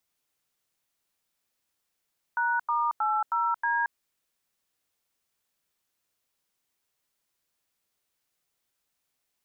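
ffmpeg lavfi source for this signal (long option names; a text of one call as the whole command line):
ffmpeg -f lavfi -i "aevalsrc='0.0501*clip(min(mod(t,0.316),0.226-mod(t,0.316))/0.002,0,1)*(eq(floor(t/0.316),0)*(sin(2*PI*941*mod(t,0.316))+sin(2*PI*1477*mod(t,0.316)))+eq(floor(t/0.316),1)*(sin(2*PI*941*mod(t,0.316))+sin(2*PI*1209*mod(t,0.316)))+eq(floor(t/0.316),2)*(sin(2*PI*852*mod(t,0.316))+sin(2*PI*1336*mod(t,0.316)))+eq(floor(t/0.316),3)*(sin(2*PI*941*mod(t,0.316))+sin(2*PI*1336*mod(t,0.316)))+eq(floor(t/0.316),4)*(sin(2*PI*941*mod(t,0.316))+sin(2*PI*1633*mod(t,0.316))))':duration=1.58:sample_rate=44100" out.wav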